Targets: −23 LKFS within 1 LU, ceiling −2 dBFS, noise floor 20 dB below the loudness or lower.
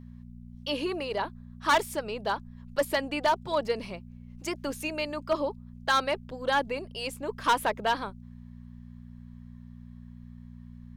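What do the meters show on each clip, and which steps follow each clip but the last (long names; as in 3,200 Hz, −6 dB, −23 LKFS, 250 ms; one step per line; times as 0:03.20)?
share of clipped samples 0.6%; peaks flattened at −18.0 dBFS; mains hum 60 Hz; hum harmonics up to 240 Hz; level of the hum −44 dBFS; integrated loudness −30.0 LKFS; sample peak −18.0 dBFS; target loudness −23.0 LKFS
→ clipped peaks rebuilt −18 dBFS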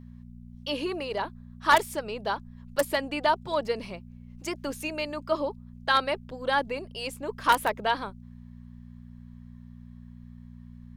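share of clipped samples 0.0%; mains hum 60 Hz; hum harmonics up to 240 Hz; level of the hum −43 dBFS
→ hum removal 60 Hz, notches 4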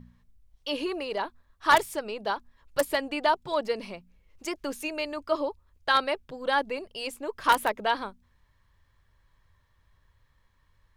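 mains hum none found; integrated loudness −29.0 LKFS; sample peak −8.5 dBFS; target loudness −23.0 LKFS
→ level +6 dB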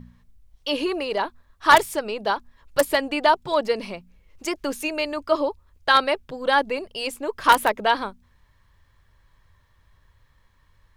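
integrated loudness −23.0 LKFS; sample peak −2.5 dBFS; background noise floor −61 dBFS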